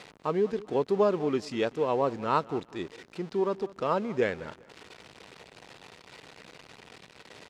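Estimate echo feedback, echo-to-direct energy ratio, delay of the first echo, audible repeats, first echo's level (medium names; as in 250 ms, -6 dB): 28%, -19.5 dB, 195 ms, 2, -20.0 dB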